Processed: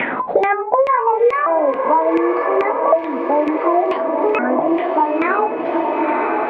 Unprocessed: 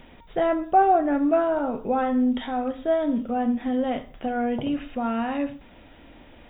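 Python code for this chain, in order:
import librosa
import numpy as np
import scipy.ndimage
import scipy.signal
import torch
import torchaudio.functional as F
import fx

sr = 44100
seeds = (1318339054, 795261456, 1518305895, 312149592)

p1 = fx.pitch_ramps(x, sr, semitones=10.0, every_ms=1462)
p2 = scipy.signal.sosfilt(scipy.signal.butter(2, 250.0, 'highpass', fs=sr, output='sos'), p1)
p3 = fx.filter_lfo_lowpass(p2, sr, shape='saw_down', hz=2.3, low_hz=430.0, high_hz=2400.0, q=5.3)
p4 = p3 + fx.echo_diffused(p3, sr, ms=970, feedback_pct=53, wet_db=-9, dry=0)
p5 = fx.band_squash(p4, sr, depth_pct=100)
y = p5 * 10.0 ** (2.5 / 20.0)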